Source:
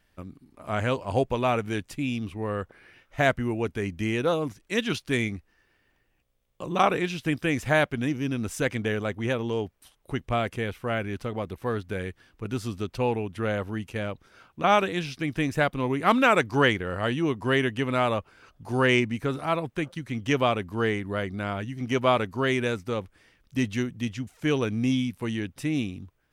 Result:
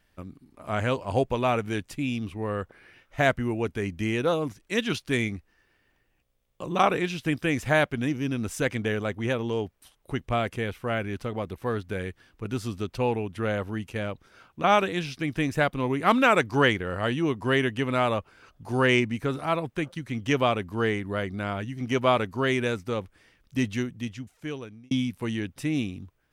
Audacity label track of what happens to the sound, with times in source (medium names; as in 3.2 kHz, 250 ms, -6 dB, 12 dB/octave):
23.670000	24.910000	fade out